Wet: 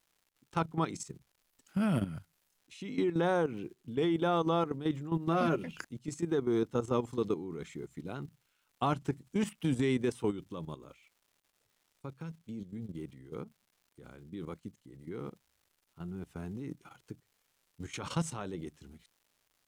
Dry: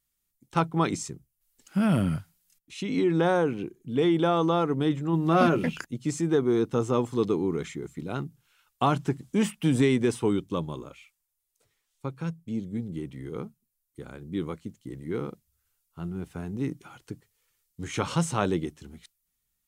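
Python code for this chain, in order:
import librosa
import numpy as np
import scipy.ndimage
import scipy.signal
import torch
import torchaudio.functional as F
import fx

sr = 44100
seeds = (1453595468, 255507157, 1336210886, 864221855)

y = fx.dmg_crackle(x, sr, seeds[0], per_s=310.0, level_db=-50.0)
y = fx.level_steps(y, sr, step_db=12)
y = fx.wow_flutter(y, sr, seeds[1], rate_hz=2.1, depth_cents=29.0)
y = y * librosa.db_to_amplitude(-4.0)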